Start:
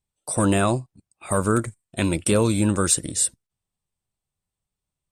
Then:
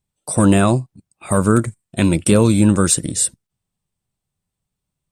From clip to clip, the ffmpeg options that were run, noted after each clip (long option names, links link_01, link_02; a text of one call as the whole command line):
ffmpeg -i in.wav -af "equalizer=frequency=170:width=0.87:gain=6,volume=3.5dB" out.wav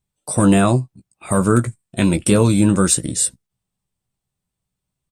ffmpeg -i in.wav -filter_complex "[0:a]asplit=2[link_01][link_02];[link_02]adelay=16,volume=-8.5dB[link_03];[link_01][link_03]amix=inputs=2:normalize=0,volume=-1dB" out.wav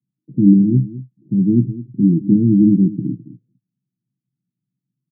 ffmpeg -i in.wav -af "asuperpass=centerf=200:order=12:qfactor=0.93,aecho=1:1:210:0.168,volume=4dB" out.wav